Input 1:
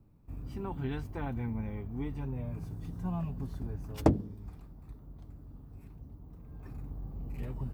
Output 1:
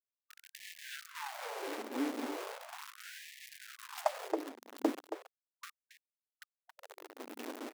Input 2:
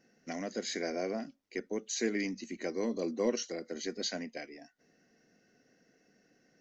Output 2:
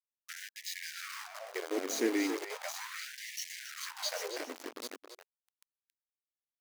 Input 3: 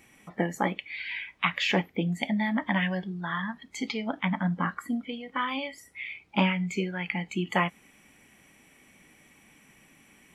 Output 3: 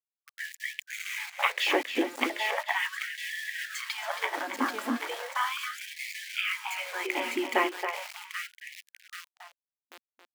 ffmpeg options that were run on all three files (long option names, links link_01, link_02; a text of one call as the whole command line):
ffmpeg -i in.wav -filter_complex "[0:a]asplit=2[link_01][link_02];[link_02]aecho=0:1:786|1572|2358|3144|3930:0.447|0.201|0.0905|0.0407|0.0183[link_03];[link_01][link_03]amix=inputs=2:normalize=0,adynamicequalizer=threshold=0.01:dfrequency=270:dqfactor=1.3:tfrequency=270:tqfactor=1.3:attack=5:release=100:ratio=0.375:range=2.5:mode=boostabove:tftype=bell,aeval=exprs='val(0)*gte(abs(val(0)),0.0188)':channel_layout=same,asplit=2[link_04][link_05];[link_05]adelay=274.1,volume=-7dB,highshelf=frequency=4000:gain=-6.17[link_06];[link_04][link_06]amix=inputs=2:normalize=0,afftfilt=real='re*gte(b*sr/1024,220*pow(1700/220,0.5+0.5*sin(2*PI*0.37*pts/sr)))':imag='im*gte(b*sr/1024,220*pow(1700/220,0.5+0.5*sin(2*PI*0.37*pts/sr)))':win_size=1024:overlap=0.75" out.wav